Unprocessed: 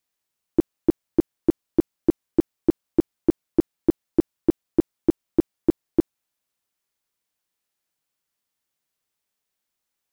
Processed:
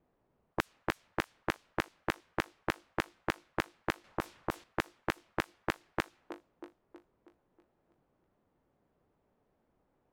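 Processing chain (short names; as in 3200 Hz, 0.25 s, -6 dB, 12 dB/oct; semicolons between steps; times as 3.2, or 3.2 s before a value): low-pass opened by the level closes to 620 Hz, open at -15 dBFS; 4.04–4.64 negative-ratio compressor -20 dBFS, ratio -0.5; thin delay 0.32 s, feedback 46%, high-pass 1500 Hz, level -18 dB; spectral compressor 10:1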